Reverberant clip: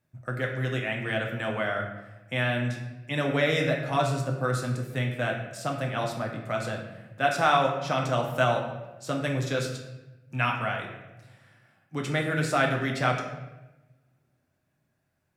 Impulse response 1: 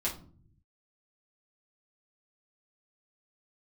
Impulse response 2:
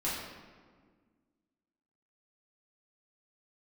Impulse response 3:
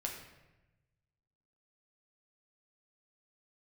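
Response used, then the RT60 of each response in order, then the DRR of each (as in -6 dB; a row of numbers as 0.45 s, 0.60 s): 3; 0.50 s, 1.7 s, 1.0 s; -6.0 dB, -9.0 dB, 0.0 dB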